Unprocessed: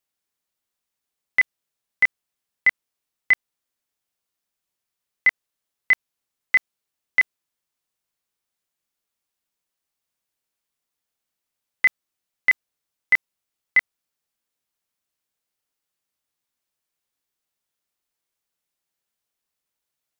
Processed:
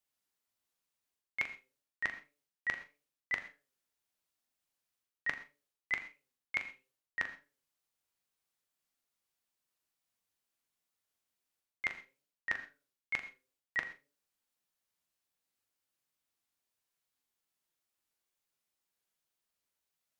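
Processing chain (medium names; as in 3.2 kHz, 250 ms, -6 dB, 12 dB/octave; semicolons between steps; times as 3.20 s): de-hum 136.9 Hz, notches 4; reverse; compression 8:1, threshold -29 dBFS, peak gain reduction 16 dB; reverse; wow and flutter 120 cents; flange 1.3 Hz, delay 5.5 ms, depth 6.7 ms, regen +76%; on a send: flutter echo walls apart 7 m, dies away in 0.22 s; on the sum: gated-style reverb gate 150 ms flat, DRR 11.5 dB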